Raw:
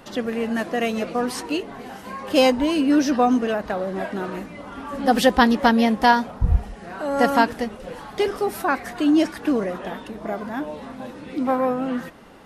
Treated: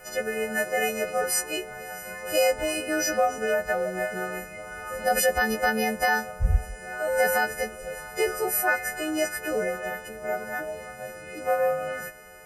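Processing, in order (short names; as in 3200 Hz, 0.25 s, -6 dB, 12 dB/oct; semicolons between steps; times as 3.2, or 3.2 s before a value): frequency quantiser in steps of 3 st; limiter -9.5 dBFS, peak gain reduction 9 dB; fixed phaser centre 1000 Hz, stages 6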